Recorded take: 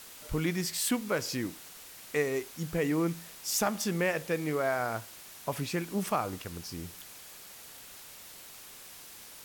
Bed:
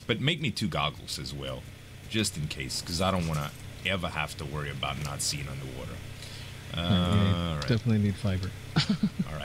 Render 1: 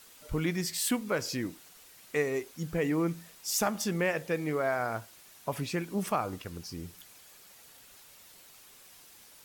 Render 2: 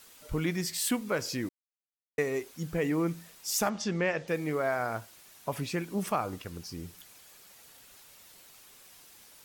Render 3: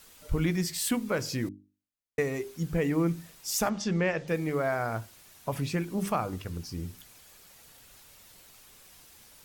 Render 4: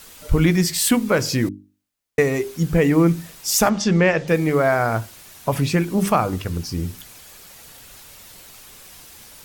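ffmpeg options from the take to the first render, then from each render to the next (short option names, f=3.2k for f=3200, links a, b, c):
-af "afftdn=nr=7:nf=-49"
-filter_complex "[0:a]asettb=1/sr,asplit=3[a][b][c];[a]atrim=end=3.694[d];[b]atrim=start=3.69:end=4.28,asetpts=PTS-STARTPTS,afade=t=in:d=0.004:c=qsin,afade=t=out:st=0.586:d=0.004:c=qsin,lowpass=f=6.4k:w=0.5412,lowpass=f=6.4k:w=1.3066[e];[c]atrim=start=4.276[f];[d][e]acrossfade=d=0.004:c1=hsin:c2=qsin[g];[g][f]acrossfade=d=0.004:c1=qsin:c2=hsin,asplit=3[h][i][j];[h]atrim=end=1.49,asetpts=PTS-STARTPTS,afade=t=out:st=1.486:d=0.004:c=hsin[k];[i]atrim=start=1.49:end=2.18,asetpts=PTS-STARTPTS,volume=0[l];[j]atrim=start=2.18,asetpts=PTS-STARTPTS,afade=t=in:d=0.004:c=hsin[m];[k][l][m]concat=n=3:v=0:a=1"
-af "lowshelf=f=160:g=11,bandreject=f=50:t=h:w=6,bandreject=f=100:t=h:w=6,bandreject=f=150:t=h:w=6,bandreject=f=200:t=h:w=6,bandreject=f=250:t=h:w=6,bandreject=f=300:t=h:w=6,bandreject=f=350:t=h:w=6,bandreject=f=400:t=h:w=6"
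-af "volume=11dB"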